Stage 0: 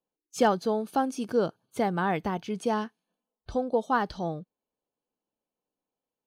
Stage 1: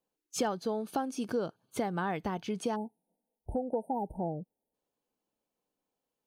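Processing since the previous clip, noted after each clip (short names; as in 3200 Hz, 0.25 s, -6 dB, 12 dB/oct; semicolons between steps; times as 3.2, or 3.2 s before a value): spectral delete 2.76–4.74, 950–8300 Hz; compressor 3:1, threshold -34 dBFS, peak gain reduction 12.5 dB; gain +2.5 dB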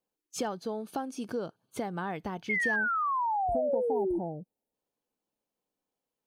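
painted sound fall, 2.49–4.19, 330–2200 Hz -27 dBFS; gain -2 dB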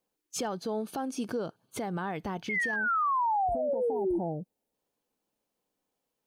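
limiter -28.5 dBFS, peak gain reduction 10 dB; gain +4.5 dB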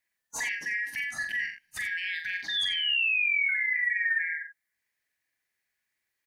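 four-band scrambler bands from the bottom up 4123; loudspeakers at several distances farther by 15 m -6 dB, 30 m -10 dB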